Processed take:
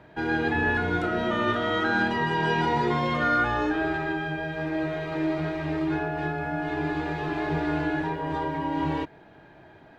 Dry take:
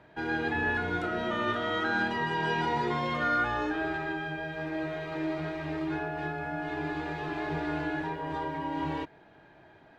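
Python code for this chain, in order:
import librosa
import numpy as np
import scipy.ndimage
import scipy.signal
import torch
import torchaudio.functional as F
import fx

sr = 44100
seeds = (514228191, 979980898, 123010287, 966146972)

y = fx.low_shelf(x, sr, hz=460.0, db=3.5)
y = y * 10.0 ** (3.5 / 20.0)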